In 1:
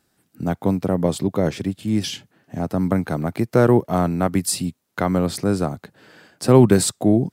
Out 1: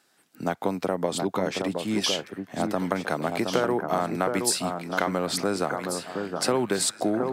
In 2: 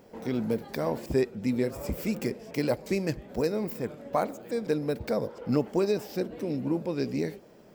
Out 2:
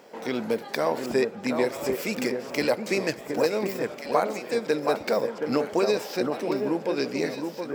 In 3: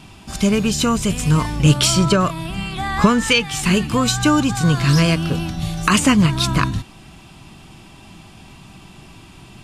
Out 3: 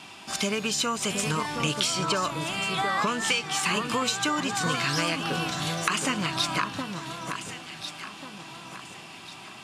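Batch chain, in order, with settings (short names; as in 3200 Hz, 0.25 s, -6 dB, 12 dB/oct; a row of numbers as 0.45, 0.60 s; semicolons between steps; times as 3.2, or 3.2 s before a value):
weighting filter A; compressor 6:1, threshold -25 dBFS; echo with dull and thin repeats by turns 0.72 s, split 1600 Hz, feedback 57%, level -5 dB; match loudness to -27 LUFS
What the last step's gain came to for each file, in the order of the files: +4.0, +7.5, +1.0 dB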